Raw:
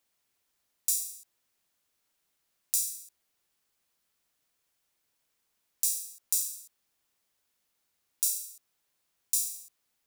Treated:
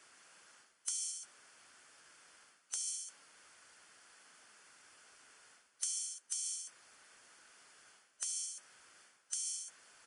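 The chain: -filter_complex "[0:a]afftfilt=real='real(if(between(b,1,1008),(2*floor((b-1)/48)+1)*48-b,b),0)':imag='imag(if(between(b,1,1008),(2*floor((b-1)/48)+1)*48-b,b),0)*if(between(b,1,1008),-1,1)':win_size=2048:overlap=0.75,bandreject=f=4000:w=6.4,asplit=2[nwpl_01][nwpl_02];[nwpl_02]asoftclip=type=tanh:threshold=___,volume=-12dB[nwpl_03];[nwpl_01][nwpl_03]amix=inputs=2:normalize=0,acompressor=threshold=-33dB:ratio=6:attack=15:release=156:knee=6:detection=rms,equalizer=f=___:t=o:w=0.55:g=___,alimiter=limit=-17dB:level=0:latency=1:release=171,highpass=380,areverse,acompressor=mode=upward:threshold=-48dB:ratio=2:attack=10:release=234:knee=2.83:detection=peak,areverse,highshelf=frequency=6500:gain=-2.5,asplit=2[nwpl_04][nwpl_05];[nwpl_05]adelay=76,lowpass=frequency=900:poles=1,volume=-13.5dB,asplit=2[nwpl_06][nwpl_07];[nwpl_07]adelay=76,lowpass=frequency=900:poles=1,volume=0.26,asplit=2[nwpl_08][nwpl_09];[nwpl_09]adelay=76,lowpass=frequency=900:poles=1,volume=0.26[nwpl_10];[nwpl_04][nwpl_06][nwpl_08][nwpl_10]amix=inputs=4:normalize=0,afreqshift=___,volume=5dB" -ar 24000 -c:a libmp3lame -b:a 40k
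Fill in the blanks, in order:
-13dB, 1600, 9, -120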